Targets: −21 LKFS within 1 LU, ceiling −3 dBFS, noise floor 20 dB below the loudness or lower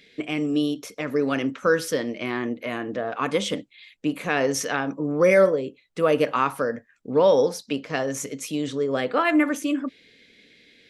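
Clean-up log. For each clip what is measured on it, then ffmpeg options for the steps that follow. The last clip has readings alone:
integrated loudness −24.0 LKFS; sample peak −7.5 dBFS; target loudness −21.0 LKFS
→ -af "volume=3dB"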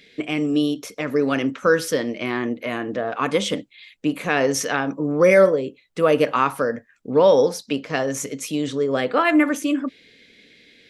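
integrated loudness −21.0 LKFS; sample peak −4.5 dBFS; background noise floor −57 dBFS

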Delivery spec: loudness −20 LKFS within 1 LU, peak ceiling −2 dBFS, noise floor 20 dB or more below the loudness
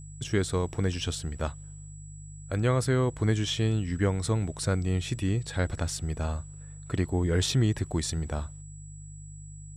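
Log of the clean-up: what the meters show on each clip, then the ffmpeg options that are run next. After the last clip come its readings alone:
mains hum 50 Hz; hum harmonics up to 150 Hz; level of the hum −43 dBFS; interfering tone 7,800 Hz; level of the tone −51 dBFS; integrated loudness −29.0 LKFS; sample peak −13.5 dBFS; target loudness −20.0 LKFS
→ -af "bandreject=frequency=50:width_type=h:width=4,bandreject=frequency=100:width_type=h:width=4,bandreject=frequency=150:width_type=h:width=4"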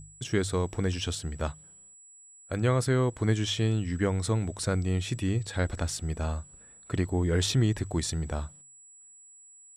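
mains hum none found; interfering tone 7,800 Hz; level of the tone −51 dBFS
→ -af "bandreject=frequency=7800:width=30"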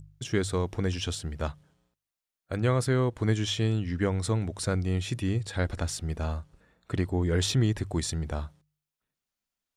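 interfering tone none found; integrated loudness −29.5 LKFS; sample peak −13.0 dBFS; target loudness −20.0 LKFS
→ -af "volume=9.5dB"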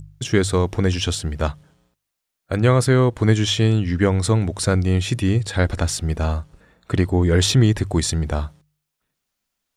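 integrated loudness −20.0 LKFS; sample peak −3.5 dBFS; background noise floor −80 dBFS

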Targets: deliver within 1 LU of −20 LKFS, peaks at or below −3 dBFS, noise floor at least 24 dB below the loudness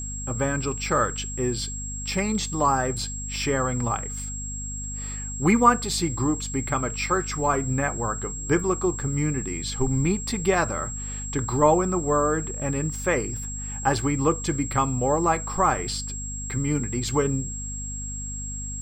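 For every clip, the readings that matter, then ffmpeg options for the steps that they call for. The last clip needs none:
mains hum 50 Hz; hum harmonics up to 250 Hz; level of the hum −33 dBFS; interfering tone 7,600 Hz; level of the tone −33 dBFS; integrated loudness −25.0 LKFS; sample peak −4.0 dBFS; target loudness −20.0 LKFS
→ -af "bandreject=frequency=50:width_type=h:width=4,bandreject=frequency=100:width_type=h:width=4,bandreject=frequency=150:width_type=h:width=4,bandreject=frequency=200:width_type=h:width=4,bandreject=frequency=250:width_type=h:width=4"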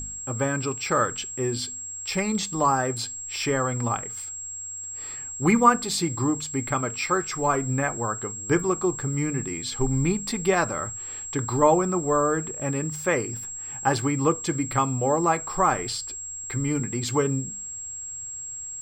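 mains hum none found; interfering tone 7,600 Hz; level of the tone −33 dBFS
→ -af "bandreject=frequency=7600:width=30"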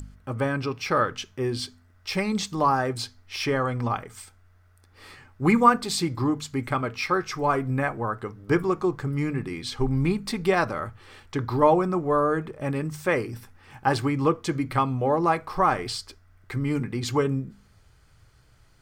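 interfering tone none found; integrated loudness −25.5 LKFS; sample peak −4.5 dBFS; target loudness −20.0 LKFS
→ -af "volume=5.5dB,alimiter=limit=-3dB:level=0:latency=1"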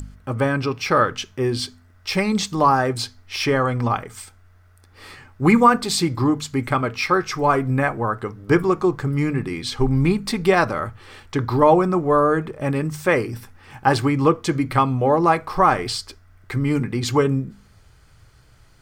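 integrated loudness −20.5 LKFS; sample peak −3.0 dBFS; background noise floor −52 dBFS

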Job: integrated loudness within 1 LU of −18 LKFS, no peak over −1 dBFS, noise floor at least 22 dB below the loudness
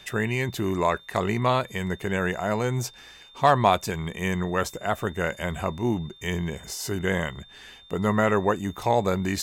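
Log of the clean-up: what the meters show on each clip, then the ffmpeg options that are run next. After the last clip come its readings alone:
interfering tone 3,600 Hz; level of the tone −49 dBFS; integrated loudness −26.0 LKFS; sample peak −7.0 dBFS; target loudness −18.0 LKFS
→ -af "bandreject=frequency=3600:width=30"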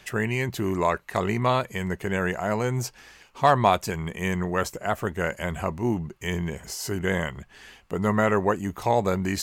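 interfering tone none found; integrated loudness −26.0 LKFS; sample peak −7.0 dBFS; target loudness −18.0 LKFS
→ -af "volume=8dB,alimiter=limit=-1dB:level=0:latency=1"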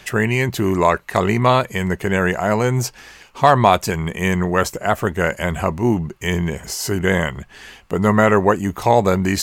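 integrated loudness −18.5 LKFS; sample peak −1.0 dBFS; background noise floor −47 dBFS

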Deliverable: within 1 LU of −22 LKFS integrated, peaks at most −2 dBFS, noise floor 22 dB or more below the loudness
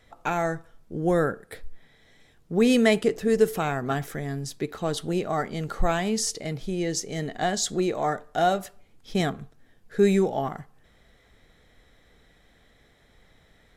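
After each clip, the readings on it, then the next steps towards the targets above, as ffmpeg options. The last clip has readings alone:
integrated loudness −26.0 LKFS; sample peak −7.0 dBFS; target loudness −22.0 LKFS
→ -af "volume=4dB"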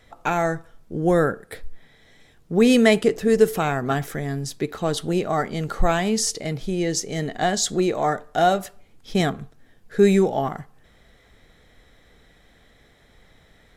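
integrated loudness −22.0 LKFS; sample peak −3.0 dBFS; background noise floor −56 dBFS

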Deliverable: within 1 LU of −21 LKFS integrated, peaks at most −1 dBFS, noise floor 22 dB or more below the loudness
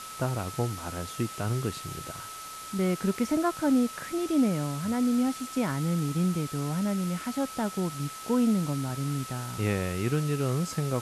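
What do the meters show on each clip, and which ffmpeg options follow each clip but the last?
interfering tone 1,300 Hz; level of the tone −41 dBFS; background noise floor −41 dBFS; target noise floor −51 dBFS; integrated loudness −29.0 LKFS; sample peak −15.0 dBFS; target loudness −21.0 LKFS
→ -af "bandreject=frequency=1300:width=30"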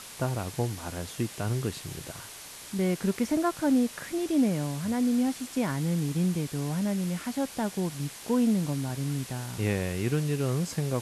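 interfering tone none found; background noise floor −45 dBFS; target noise floor −52 dBFS
→ -af "afftdn=noise_reduction=7:noise_floor=-45"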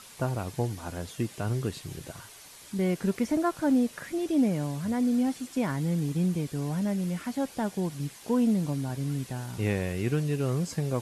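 background noise floor −49 dBFS; target noise floor −52 dBFS
→ -af "afftdn=noise_reduction=6:noise_floor=-49"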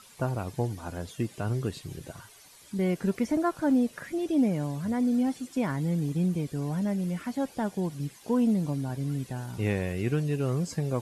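background noise floor −53 dBFS; integrated loudness −29.5 LKFS; sample peak −15.5 dBFS; target loudness −21.0 LKFS
→ -af "volume=8.5dB"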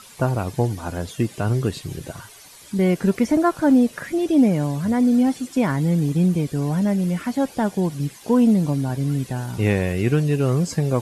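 integrated loudness −21.0 LKFS; sample peak −7.0 dBFS; background noise floor −45 dBFS

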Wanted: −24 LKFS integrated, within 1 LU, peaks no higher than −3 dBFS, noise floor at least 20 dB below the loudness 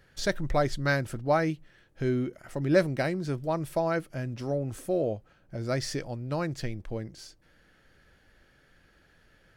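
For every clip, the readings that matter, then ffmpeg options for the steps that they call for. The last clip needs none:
integrated loudness −30.0 LKFS; sample peak −10.0 dBFS; target loudness −24.0 LKFS
→ -af "volume=6dB"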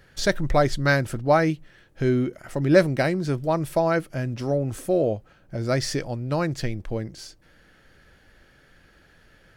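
integrated loudness −24.0 LKFS; sample peak −4.0 dBFS; background noise floor −57 dBFS

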